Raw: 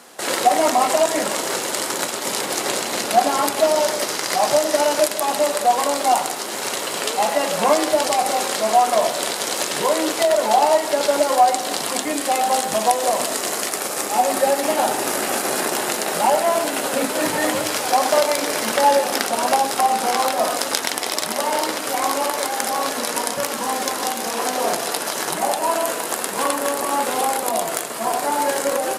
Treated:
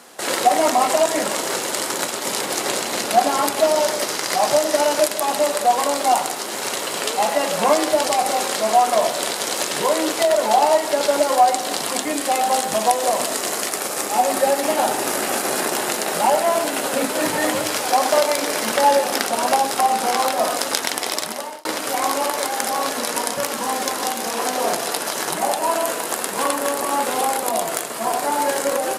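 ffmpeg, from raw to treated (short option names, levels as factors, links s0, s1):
-filter_complex "[0:a]asettb=1/sr,asplit=3[s0][s1][s2];[s0]atrim=end=17.834[s3];[s1]atrim=start=17.83:end=18.64,asetpts=PTS-STARTPTS,afade=t=in:d=0.004:c=qsin,afade=t=out:st=0.806:d=0.004:c=qsin,highpass=120[s4];[s2]atrim=start=18.636[s5];[s3][s4]acrossfade=d=0.004:c1=hsin:c2=qsin[s6];[s6][s5]acrossfade=d=0.004:c1=qsin:c2=hsin,asplit=2[s7][s8];[s7]atrim=end=21.65,asetpts=PTS-STARTPTS,afade=t=out:st=21.13:d=0.52[s9];[s8]atrim=start=21.65,asetpts=PTS-STARTPTS,afade=t=in:d=0.004:c=hsin[s10];[s9][s10]concat=n=2:v=0:a=1"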